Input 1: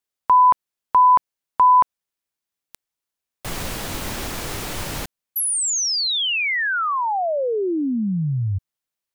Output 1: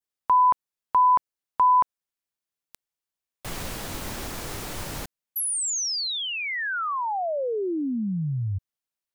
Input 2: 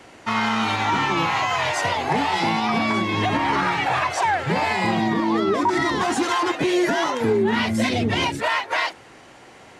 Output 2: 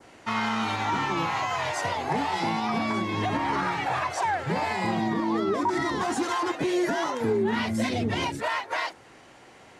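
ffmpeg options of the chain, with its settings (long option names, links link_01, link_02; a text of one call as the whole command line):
ffmpeg -i in.wav -af "adynamicequalizer=threshold=0.0158:dfrequency=2800:dqfactor=1.1:tfrequency=2800:tqfactor=1.1:attack=5:release=100:ratio=0.375:range=2:mode=cutabove:tftype=bell,volume=-5dB" out.wav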